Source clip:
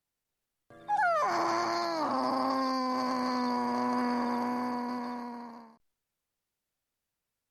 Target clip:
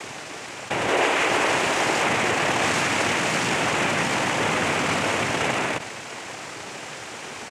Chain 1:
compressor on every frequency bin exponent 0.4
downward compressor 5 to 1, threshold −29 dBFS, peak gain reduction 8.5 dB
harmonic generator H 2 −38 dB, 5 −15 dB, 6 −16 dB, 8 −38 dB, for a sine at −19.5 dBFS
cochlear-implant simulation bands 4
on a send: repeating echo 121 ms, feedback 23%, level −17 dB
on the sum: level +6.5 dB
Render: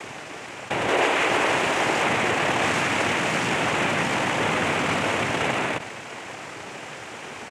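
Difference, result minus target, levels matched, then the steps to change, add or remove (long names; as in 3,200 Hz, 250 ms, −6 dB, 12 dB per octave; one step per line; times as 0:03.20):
8,000 Hz band −4.0 dB
add after downward compressor: high-shelf EQ 4,200 Hz +9.5 dB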